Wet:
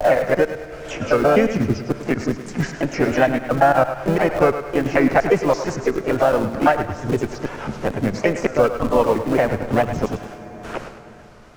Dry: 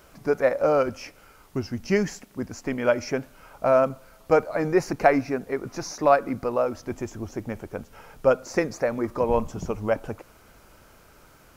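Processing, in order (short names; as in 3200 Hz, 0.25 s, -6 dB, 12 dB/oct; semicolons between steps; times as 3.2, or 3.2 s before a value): slices in reverse order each 0.113 s, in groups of 6; LPF 6000 Hz 12 dB/oct; gate with hold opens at -42 dBFS; low shelf 160 Hz +2.5 dB; harmonic-percussive split harmonic +5 dB; dynamic EQ 1700 Hz, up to +4 dB, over -39 dBFS, Q 1.7; wow and flutter 130 cents; in parallel at -12 dB: Schmitt trigger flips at -24 dBFS; on the sum: harmoniser +3 st -6 dB; thinning echo 0.103 s, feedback 33%, level -11 dB; on a send at -17 dB: reverb RT60 2.4 s, pre-delay 4 ms; on the sum: three-band squash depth 70%; gain +1 dB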